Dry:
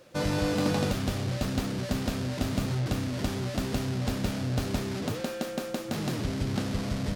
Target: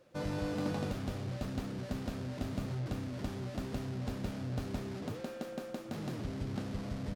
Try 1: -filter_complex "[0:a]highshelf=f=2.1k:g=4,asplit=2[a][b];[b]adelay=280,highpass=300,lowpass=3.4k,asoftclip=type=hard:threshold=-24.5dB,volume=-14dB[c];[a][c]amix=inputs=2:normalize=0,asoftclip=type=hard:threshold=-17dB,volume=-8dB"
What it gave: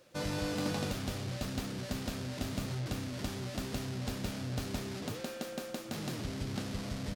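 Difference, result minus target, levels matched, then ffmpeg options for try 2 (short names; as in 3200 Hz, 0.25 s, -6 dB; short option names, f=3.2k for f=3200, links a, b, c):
4000 Hz band +7.0 dB
-filter_complex "[0:a]highshelf=f=2.1k:g=-6.5,asplit=2[a][b];[b]adelay=280,highpass=300,lowpass=3.4k,asoftclip=type=hard:threshold=-24.5dB,volume=-14dB[c];[a][c]amix=inputs=2:normalize=0,asoftclip=type=hard:threshold=-17dB,volume=-8dB"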